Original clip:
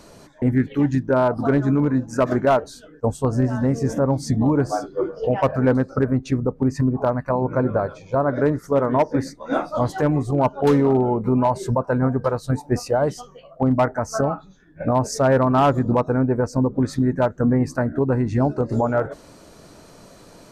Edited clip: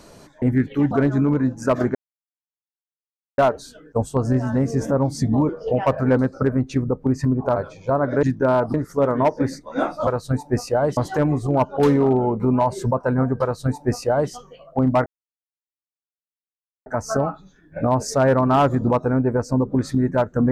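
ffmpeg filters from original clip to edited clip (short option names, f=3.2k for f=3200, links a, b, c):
-filter_complex "[0:a]asplit=10[a][b][c][d][e][f][g][h][i][j];[a]atrim=end=0.912[k];[b]atrim=start=1.418:end=2.46,asetpts=PTS-STARTPTS,afade=t=out:st=1.038:d=0.004:c=hsin,apad=pad_dur=1.43[l];[c]atrim=start=2.46:end=4.572,asetpts=PTS-STARTPTS,afade=t=in:d=0.004:c=hsin[m];[d]atrim=start=5.048:end=7.122[n];[e]atrim=start=7.808:end=8.482[o];[f]atrim=start=0.908:end=1.422[p];[g]atrim=start=8.478:end=9.812[q];[h]atrim=start=12.258:end=13.162[r];[i]atrim=start=9.808:end=13.9,asetpts=PTS-STARTPTS,afade=t=out:st=4.088:d=0.004:c=hsin,apad=pad_dur=1.8[s];[j]atrim=start=13.9,asetpts=PTS-STARTPTS,afade=t=in:d=0.004:c=hsin[t];[l][m]concat=n=2:v=0:a=1[u];[k][u]acrossfade=d=0.004:c1=hsin:c2=hsin[v];[v][n]acrossfade=d=0.004:c1=hsin:c2=hsin[w];[w][o]acrossfade=d=0.004:c1=hsin:c2=hsin[x];[x][p]acrossfade=d=0.004:c1=hsin:c2=hsin[y];[y][q]acrossfade=d=0.004:c1=hsin:c2=hsin[z];[z][r]acrossfade=d=0.004:c1=hsin:c2=hsin[aa];[s][t]concat=n=2:v=0:a=1[ab];[aa][ab]acrossfade=d=0.004:c1=hsin:c2=hsin"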